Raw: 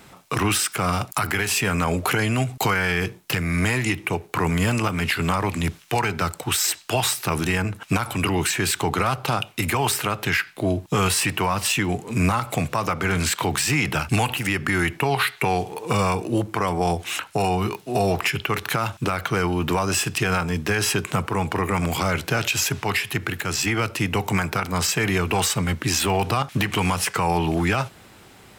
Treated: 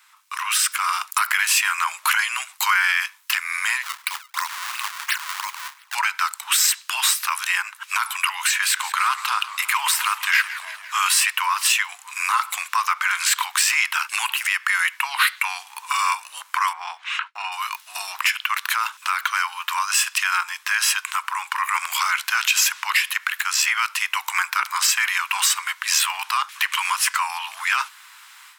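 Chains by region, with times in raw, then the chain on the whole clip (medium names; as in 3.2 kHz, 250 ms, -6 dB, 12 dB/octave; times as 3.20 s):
3.83–5.95 s: de-hum 140.8 Hz, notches 35 + decimation with a swept rate 30×, swing 160% 2.9 Hz
8.45–10.94 s: tone controls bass -12 dB, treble -2 dB + modulated delay 171 ms, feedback 64%, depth 179 cents, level -14 dB
16.73–17.52 s: low-pass 2.9 kHz + expander -41 dBFS + short-mantissa float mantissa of 8-bit
whole clip: Chebyshev high-pass 990 Hz, order 5; level rider gain up to 11.5 dB; trim -4 dB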